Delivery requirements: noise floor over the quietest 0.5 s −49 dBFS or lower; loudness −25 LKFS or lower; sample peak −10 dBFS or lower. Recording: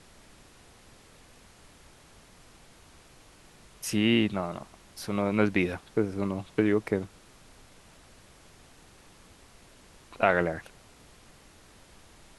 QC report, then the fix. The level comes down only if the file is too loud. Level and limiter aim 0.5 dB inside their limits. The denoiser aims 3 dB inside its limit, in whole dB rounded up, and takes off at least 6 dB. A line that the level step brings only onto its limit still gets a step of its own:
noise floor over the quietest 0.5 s −55 dBFS: in spec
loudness −28.0 LKFS: in spec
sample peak −6.5 dBFS: out of spec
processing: brickwall limiter −10.5 dBFS

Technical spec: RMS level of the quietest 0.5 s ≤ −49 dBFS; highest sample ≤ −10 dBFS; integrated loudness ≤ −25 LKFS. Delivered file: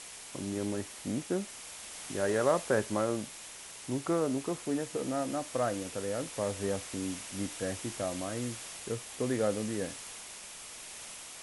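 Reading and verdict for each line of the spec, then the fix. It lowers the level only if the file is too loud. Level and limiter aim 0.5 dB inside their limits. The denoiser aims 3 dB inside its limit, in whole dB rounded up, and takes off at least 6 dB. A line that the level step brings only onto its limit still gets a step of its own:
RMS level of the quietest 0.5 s −47 dBFS: out of spec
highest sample −13.5 dBFS: in spec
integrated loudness −34.5 LKFS: in spec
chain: broadband denoise 6 dB, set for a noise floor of −47 dBFS

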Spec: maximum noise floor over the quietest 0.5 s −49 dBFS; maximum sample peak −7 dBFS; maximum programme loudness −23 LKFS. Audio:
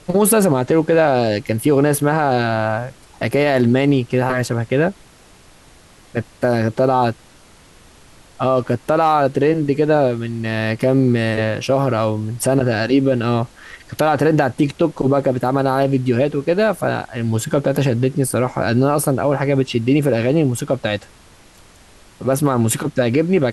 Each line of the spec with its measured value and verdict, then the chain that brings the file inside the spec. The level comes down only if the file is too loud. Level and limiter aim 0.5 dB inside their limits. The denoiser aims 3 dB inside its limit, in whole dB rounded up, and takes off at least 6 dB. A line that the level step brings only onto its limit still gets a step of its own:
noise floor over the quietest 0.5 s −47 dBFS: out of spec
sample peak −5.5 dBFS: out of spec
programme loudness −17.5 LKFS: out of spec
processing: level −6 dB

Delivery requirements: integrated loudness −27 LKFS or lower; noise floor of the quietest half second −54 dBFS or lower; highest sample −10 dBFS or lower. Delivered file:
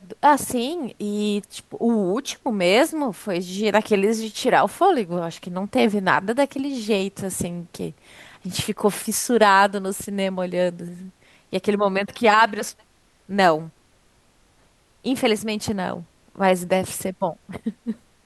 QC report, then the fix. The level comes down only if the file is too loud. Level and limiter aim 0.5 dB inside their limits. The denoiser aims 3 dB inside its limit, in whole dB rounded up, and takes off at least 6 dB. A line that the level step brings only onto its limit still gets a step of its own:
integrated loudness −22.0 LKFS: out of spec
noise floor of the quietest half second −59 dBFS: in spec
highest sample −3.0 dBFS: out of spec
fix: level −5.5 dB
brickwall limiter −10.5 dBFS

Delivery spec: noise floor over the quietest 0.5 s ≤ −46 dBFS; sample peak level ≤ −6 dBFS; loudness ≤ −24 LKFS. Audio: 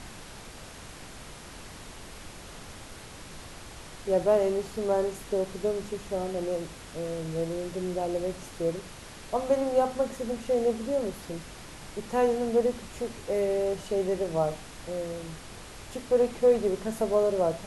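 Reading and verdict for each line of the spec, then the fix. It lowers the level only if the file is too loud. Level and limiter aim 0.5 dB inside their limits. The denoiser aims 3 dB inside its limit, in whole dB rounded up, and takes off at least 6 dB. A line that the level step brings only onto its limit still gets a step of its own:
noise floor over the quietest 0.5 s −45 dBFS: out of spec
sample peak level −12.0 dBFS: in spec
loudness −29.0 LKFS: in spec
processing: broadband denoise 6 dB, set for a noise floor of −45 dBFS

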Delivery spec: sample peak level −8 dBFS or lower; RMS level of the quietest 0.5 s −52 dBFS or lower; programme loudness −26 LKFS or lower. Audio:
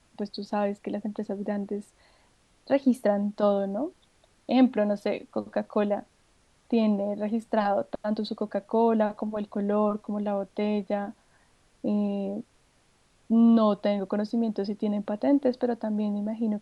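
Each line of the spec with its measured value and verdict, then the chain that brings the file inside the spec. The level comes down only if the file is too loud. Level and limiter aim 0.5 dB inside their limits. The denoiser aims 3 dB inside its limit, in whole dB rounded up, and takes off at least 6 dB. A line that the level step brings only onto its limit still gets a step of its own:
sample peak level −10.0 dBFS: in spec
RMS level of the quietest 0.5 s −64 dBFS: in spec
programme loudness −27.5 LKFS: in spec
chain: no processing needed

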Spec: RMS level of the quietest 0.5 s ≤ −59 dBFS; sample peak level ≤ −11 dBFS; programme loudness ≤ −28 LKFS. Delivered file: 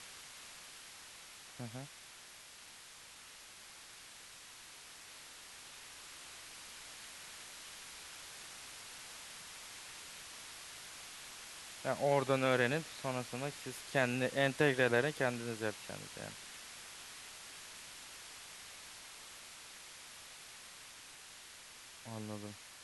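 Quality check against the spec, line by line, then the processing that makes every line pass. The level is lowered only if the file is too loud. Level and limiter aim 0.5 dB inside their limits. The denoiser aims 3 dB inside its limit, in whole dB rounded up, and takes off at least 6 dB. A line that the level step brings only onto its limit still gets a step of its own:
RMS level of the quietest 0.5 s −55 dBFS: out of spec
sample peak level −16.0 dBFS: in spec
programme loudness −40.0 LKFS: in spec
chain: broadband denoise 7 dB, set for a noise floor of −55 dBFS

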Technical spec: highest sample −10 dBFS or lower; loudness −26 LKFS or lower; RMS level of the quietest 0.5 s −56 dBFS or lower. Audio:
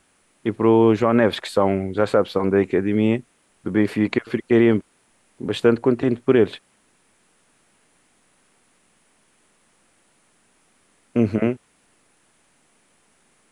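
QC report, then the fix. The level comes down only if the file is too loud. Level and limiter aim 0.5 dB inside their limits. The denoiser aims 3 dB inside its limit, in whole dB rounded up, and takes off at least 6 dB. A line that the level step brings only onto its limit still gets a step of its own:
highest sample −5.0 dBFS: out of spec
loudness −20.0 LKFS: out of spec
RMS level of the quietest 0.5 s −62 dBFS: in spec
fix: level −6.5 dB

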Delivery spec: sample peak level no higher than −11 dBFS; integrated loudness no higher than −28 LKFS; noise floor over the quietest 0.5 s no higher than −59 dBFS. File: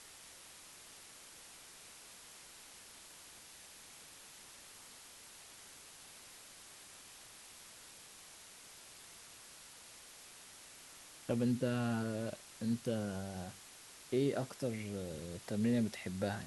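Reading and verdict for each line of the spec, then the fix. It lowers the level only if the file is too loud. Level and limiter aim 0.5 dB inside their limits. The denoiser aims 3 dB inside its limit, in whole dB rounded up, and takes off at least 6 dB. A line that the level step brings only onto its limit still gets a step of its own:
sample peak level −21.5 dBFS: in spec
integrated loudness −38.0 LKFS: in spec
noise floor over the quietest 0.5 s −56 dBFS: out of spec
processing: broadband denoise 6 dB, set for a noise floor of −56 dBFS

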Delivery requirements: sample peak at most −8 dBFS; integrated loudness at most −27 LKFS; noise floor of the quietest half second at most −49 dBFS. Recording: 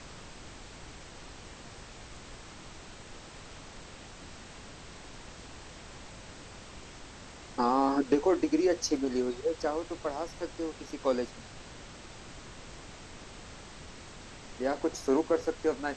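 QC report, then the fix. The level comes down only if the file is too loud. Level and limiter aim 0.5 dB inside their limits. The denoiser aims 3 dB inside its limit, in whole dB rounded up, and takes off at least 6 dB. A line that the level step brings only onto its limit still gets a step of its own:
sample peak −14.5 dBFS: in spec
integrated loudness −30.5 LKFS: in spec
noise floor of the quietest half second −48 dBFS: out of spec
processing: broadband denoise 6 dB, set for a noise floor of −48 dBFS

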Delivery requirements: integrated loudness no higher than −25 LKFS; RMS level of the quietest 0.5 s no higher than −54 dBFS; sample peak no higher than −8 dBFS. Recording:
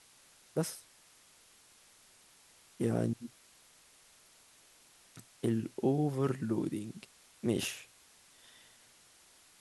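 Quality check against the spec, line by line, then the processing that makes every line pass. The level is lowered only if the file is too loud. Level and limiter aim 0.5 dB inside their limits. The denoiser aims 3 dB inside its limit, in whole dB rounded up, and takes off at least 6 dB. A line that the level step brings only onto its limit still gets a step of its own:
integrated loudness −35.0 LKFS: in spec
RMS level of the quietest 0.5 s −62 dBFS: in spec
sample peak −18.0 dBFS: in spec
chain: no processing needed

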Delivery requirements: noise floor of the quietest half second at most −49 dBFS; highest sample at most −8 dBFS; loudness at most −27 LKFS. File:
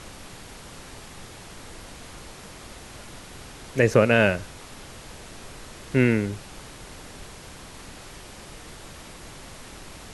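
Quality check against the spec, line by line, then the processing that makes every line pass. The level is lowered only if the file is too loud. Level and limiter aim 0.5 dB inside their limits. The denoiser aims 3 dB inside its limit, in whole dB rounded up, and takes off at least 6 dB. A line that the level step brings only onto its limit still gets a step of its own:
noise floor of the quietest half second −43 dBFS: out of spec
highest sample −4.5 dBFS: out of spec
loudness −22.0 LKFS: out of spec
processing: broadband denoise 6 dB, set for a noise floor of −43 dBFS
level −5.5 dB

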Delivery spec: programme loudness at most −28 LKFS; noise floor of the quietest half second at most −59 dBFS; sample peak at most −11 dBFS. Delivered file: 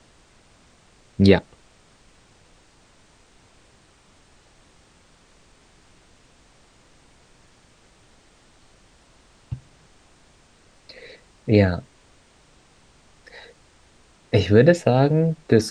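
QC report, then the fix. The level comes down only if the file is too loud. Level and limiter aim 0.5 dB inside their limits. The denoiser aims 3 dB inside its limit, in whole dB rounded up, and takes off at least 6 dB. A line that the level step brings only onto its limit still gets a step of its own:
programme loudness −19.0 LKFS: out of spec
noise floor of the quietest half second −56 dBFS: out of spec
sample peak −2.0 dBFS: out of spec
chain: level −9.5 dB

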